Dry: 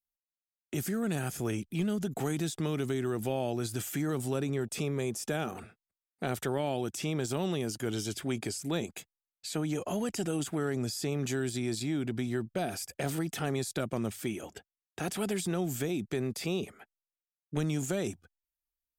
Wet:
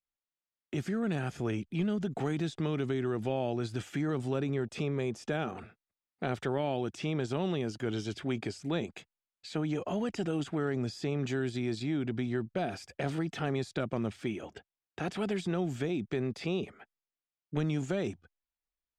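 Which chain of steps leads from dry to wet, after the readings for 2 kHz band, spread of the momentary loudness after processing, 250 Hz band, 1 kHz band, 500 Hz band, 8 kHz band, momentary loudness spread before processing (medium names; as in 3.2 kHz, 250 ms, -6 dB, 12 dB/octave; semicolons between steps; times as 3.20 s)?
-0.5 dB, 6 LU, 0.0 dB, 0.0 dB, 0.0 dB, -13.0 dB, 5 LU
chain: low-pass 3.8 kHz 12 dB/octave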